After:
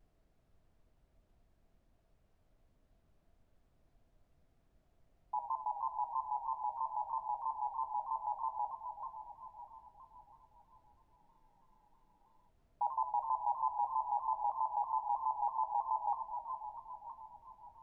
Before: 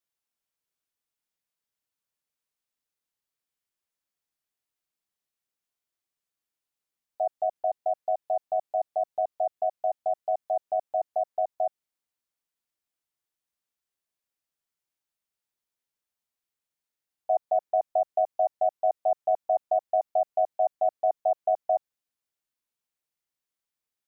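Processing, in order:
Butterworth low-pass 760 Hz 72 dB per octave
low-shelf EQ 340 Hz −11 dB
tuned comb filter 480 Hz, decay 0.26 s, mix 80%
feedback echo with a long and a short gap by turns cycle 767 ms, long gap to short 3 to 1, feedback 46%, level −7.5 dB
convolution reverb RT60 0.40 s, pre-delay 54 ms, DRR 6 dB
background noise brown −75 dBFS
parametric band 490 Hz +10.5 dB 0.2 octaves
wrong playback speed 33 rpm record played at 45 rpm
frozen spectrum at 0:11.19, 1.30 s
pitch modulation by a square or saw wave saw down 3.1 Hz, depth 100 cents
level +5.5 dB

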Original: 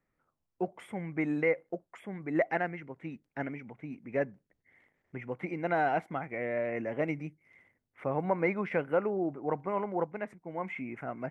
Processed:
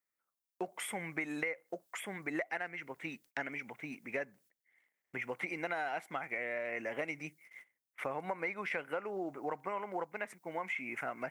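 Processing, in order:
noise gate −60 dBFS, range −17 dB
spectral tilt +4.5 dB per octave
downward compressor 6 to 1, threshold −39 dBFS, peak gain reduction 15 dB
level +4.5 dB

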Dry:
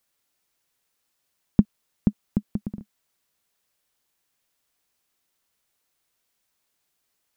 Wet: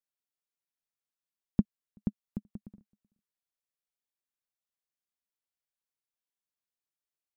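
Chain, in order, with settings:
single-tap delay 380 ms −23 dB
expander for the loud parts 1.5 to 1, over −39 dBFS
level −8.5 dB

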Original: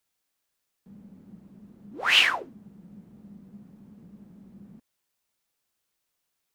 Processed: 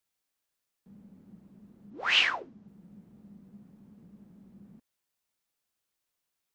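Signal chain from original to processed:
0:01.90–0:02.68: low-pass filter 6,600 Hz 24 dB per octave
level −4.5 dB

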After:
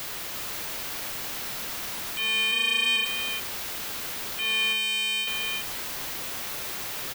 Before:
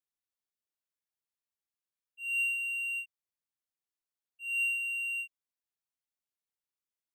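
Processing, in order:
spike at every zero crossing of −32.5 dBFS
parametric band 8,100 Hz −10.5 dB 1.4 octaves
ring modulation 330 Hz
mid-hump overdrive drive 35 dB, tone 3,000 Hz, clips at −26.5 dBFS
0:02.52–0:02.96: frequency shifter +27 Hz
single-tap delay 341 ms −5 dB
level +8.5 dB

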